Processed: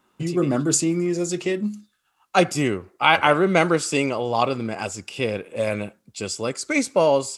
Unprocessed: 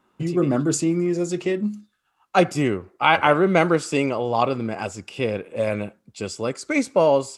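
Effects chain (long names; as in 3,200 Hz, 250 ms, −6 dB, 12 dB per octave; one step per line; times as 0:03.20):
high-shelf EQ 3,000 Hz +8 dB
level −1 dB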